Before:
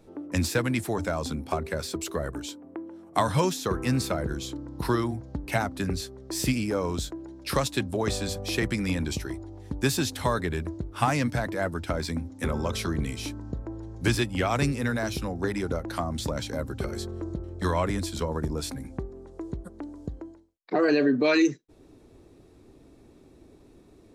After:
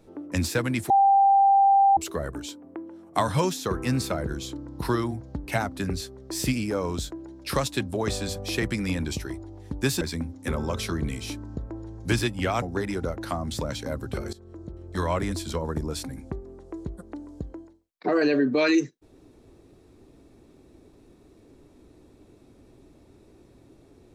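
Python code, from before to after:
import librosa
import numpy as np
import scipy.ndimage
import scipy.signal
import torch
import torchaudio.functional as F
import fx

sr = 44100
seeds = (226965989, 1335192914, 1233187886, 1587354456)

y = fx.edit(x, sr, fx.bleep(start_s=0.9, length_s=1.07, hz=789.0, db=-14.5),
    fx.cut(start_s=10.01, length_s=1.96),
    fx.cut(start_s=14.58, length_s=0.71),
    fx.fade_in_from(start_s=17.0, length_s=0.8, floor_db=-18.0), tone=tone)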